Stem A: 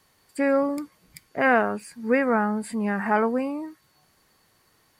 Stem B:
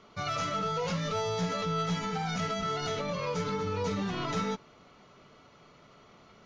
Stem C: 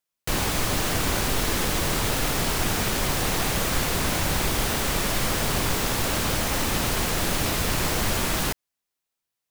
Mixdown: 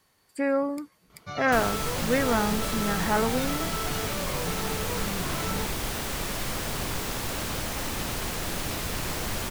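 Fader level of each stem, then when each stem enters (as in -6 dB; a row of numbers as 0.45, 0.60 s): -3.5, -2.5, -6.5 dB; 0.00, 1.10, 1.25 s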